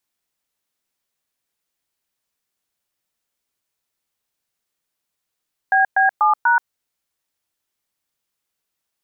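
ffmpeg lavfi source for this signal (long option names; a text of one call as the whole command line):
ffmpeg -f lavfi -i "aevalsrc='0.188*clip(min(mod(t,0.244),0.129-mod(t,0.244))/0.002,0,1)*(eq(floor(t/0.244),0)*(sin(2*PI*770*mod(t,0.244))+sin(2*PI*1633*mod(t,0.244)))+eq(floor(t/0.244),1)*(sin(2*PI*770*mod(t,0.244))+sin(2*PI*1633*mod(t,0.244)))+eq(floor(t/0.244),2)*(sin(2*PI*852*mod(t,0.244))+sin(2*PI*1209*mod(t,0.244)))+eq(floor(t/0.244),3)*(sin(2*PI*941*mod(t,0.244))+sin(2*PI*1477*mod(t,0.244))))':duration=0.976:sample_rate=44100" out.wav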